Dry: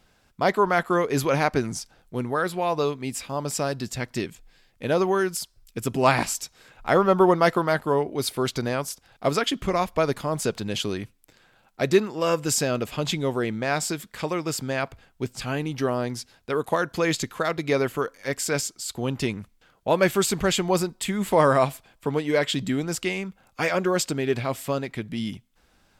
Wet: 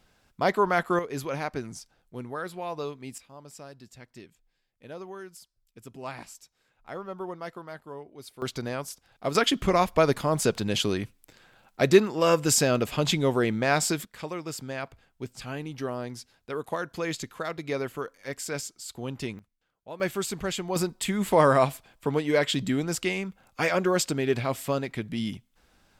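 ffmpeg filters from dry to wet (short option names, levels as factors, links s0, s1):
-af "asetnsamples=n=441:p=0,asendcmd='0.99 volume volume -9.5dB;3.18 volume volume -18.5dB;8.42 volume volume -6dB;9.35 volume volume 1.5dB;14.05 volume volume -7.5dB;19.39 volume volume -19dB;20 volume volume -8dB;20.76 volume volume -1dB',volume=0.75"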